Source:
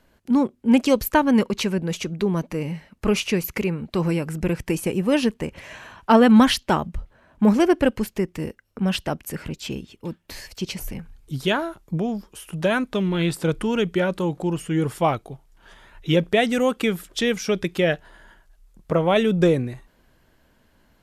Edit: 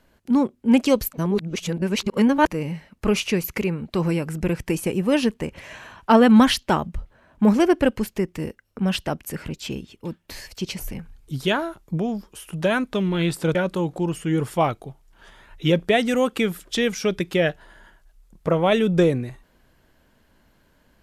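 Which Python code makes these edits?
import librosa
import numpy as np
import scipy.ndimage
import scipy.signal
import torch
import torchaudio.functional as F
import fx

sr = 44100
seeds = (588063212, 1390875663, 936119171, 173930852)

y = fx.edit(x, sr, fx.reverse_span(start_s=1.13, length_s=1.34),
    fx.cut(start_s=13.55, length_s=0.44), tone=tone)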